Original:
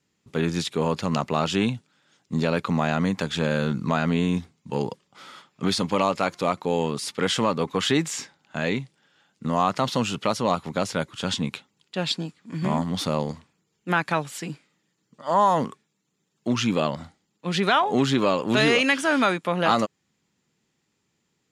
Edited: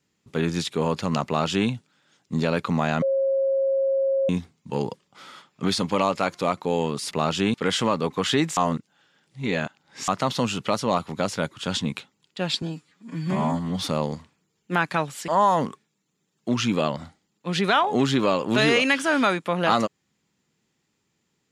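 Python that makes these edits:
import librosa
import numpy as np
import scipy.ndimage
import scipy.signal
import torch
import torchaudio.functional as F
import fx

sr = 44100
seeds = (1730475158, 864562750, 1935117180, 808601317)

y = fx.edit(x, sr, fx.duplicate(start_s=1.26, length_s=0.43, to_s=7.11),
    fx.bleep(start_s=3.02, length_s=1.27, hz=541.0, db=-19.0),
    fx.reverse_span(start_s=8.14, length_s=1.51),
    fx.stretch_span(start_s=12.19, length_s=0.8, factor=1.5),
    fx.cut(start_s=14.45, length_s=0.82), tone=tone)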